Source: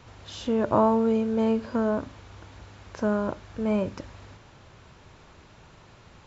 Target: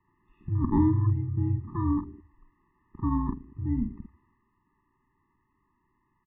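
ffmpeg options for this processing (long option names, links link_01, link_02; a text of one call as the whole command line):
ffmpeg -i in.wav -filter_complex "[0:a]lowshelf=frequency=480:gain=-3.5,highpass=frequency=280:width_type=q:width=0.5412,highpass=frequency=280:width_type=q:width=1.307,lowpass=frequency=2300:width_type=q:width=0.5176,lowpass=frequency=2300:width_type=q:width=0.7071,lowpass=frequency=2300:width_type=q:width=1.932,afreqshift=-350,asplit=2[link_01][link_02];[link_02]adelay=48,volume=-9dB[link_03];[link_01][link_03]amix=inputs=2:normalize=0,aecho=1:1:116|232|348|464|580:0.119|0.0642|0.0347|0.0187|0.0101,afwtdn=0.0141,afftfilt=real='re*eq(mod(floor(b*sr/1024/420),2),0)':imag='im*eq(mod(floor(b*sr/1024/420),2),0)':win_size=1024:overlap=0.75,volume=2.5dB" out.wav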